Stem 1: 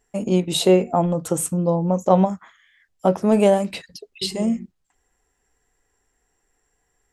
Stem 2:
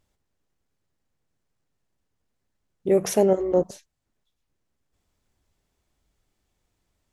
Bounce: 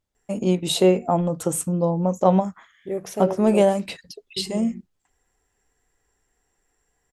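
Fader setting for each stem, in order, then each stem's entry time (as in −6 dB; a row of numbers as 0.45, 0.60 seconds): −1.5, −8.5 decibels; 0.15, 0.00 seconds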